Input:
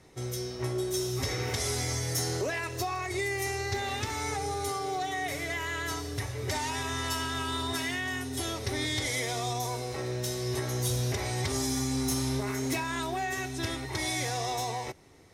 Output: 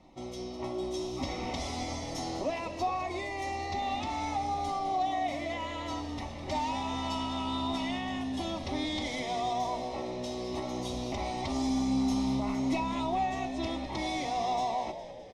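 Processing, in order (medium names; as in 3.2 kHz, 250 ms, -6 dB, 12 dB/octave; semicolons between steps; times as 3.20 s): low-pass 2.9 kHz 12 dB/octave; static phaser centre 430 Hz, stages 6; frequency-shifting echo 205 ms, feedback 59%, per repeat -64 Hz, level -12 dB; trim +4 dB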